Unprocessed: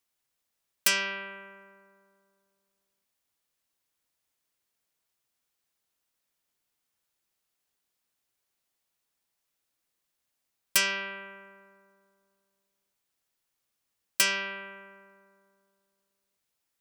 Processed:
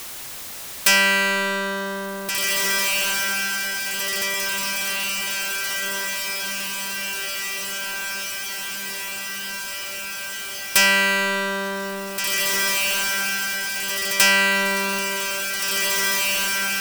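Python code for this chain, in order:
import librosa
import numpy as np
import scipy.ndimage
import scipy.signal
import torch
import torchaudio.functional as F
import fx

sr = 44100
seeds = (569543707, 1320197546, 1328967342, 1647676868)

y = fx.echo_diffused(x, sr, ms=1930, feedback_pct=47, wet_db=-13)
y = fx.power_curve(y, sr, exponent=0.35)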